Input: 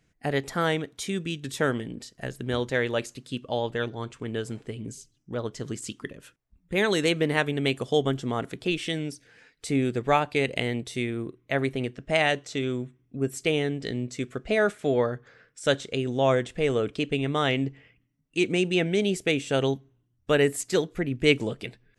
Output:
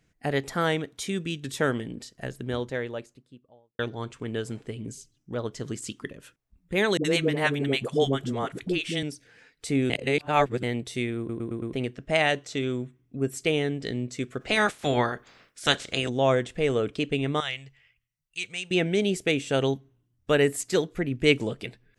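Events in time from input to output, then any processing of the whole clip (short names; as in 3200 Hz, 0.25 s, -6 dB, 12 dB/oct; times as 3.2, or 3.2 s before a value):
2.02–3.79 studio fade out
6.97–9.03 dispersion highs, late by 76 ms, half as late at 440 Hz
9.9–10.63 reverse
11.18 stutter in place 0.11 s, 5 plays
14.4–16.08 spectral limiter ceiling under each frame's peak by 19 dB
17.4–18.71 passive tone stack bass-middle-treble 10-0-10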